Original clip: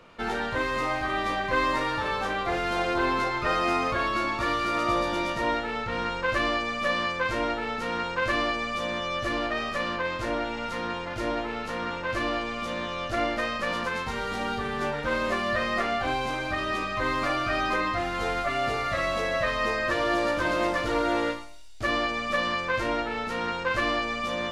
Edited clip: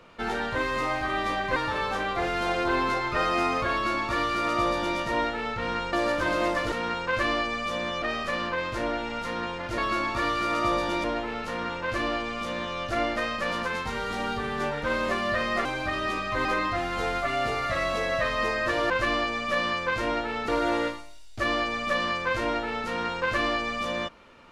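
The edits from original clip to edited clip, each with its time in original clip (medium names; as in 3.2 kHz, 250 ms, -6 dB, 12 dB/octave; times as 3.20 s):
1.56–1.86 s: delete
4.02–5.28 s: copy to 11.25 s
6.23–7.81 s: swap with 20.12–20.91 s
9.11–9.49 s: delete
15.86–16.30 s: delete
17.10–17.67 s: delete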